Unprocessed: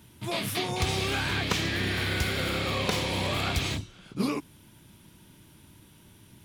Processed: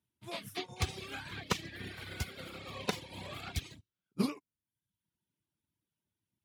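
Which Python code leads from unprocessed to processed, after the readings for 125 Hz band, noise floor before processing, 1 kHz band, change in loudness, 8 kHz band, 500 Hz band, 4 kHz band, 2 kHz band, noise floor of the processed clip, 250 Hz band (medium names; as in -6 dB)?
-11.5 dB, -55 dBFS, -11.0 dB, -11.0 dB, -10.0 dB, -11.0 dB, -12.5 dB, -13.0 dB, under -85 dBFS, -8.5 dB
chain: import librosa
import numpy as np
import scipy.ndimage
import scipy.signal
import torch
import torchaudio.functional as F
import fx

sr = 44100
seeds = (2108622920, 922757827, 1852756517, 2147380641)

y = scipy.signal.sosfilt(scipy.signal.butter(2, 61.0, 'highpass', fs=sr, output='sos'), x)
y = fx.dereverb_blind(y, sr, rt60_s=1.3)
y = fx.upward_expand(y, sr, threshold_db=-45.0, expansion=2.5)
y = y * librosa.db_to_amplitude(-1.5)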